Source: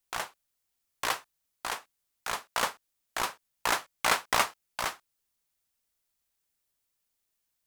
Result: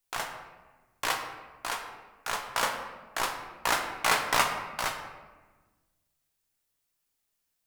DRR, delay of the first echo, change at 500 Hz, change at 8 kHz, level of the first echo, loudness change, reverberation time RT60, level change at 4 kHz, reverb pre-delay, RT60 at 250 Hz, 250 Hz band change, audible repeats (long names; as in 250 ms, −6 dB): 3.0 dB, no echo audible, +1.5 dB, +1.0 dB, no echo audible, +1.5 dB, 1.3 s, +1.0 dB, 3 ms, 1.8 s, +2.5 dB, no echo audible